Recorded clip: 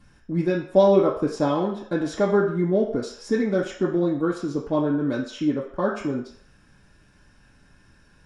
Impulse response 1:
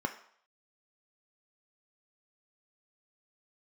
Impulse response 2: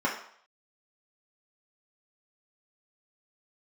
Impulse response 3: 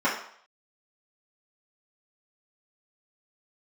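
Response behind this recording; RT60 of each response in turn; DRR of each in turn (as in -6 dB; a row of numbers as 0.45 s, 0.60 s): 2; 0.60 s, 0.60 s, 0.60 s; 5.0 dB, -4.5 dB, -9.5 dB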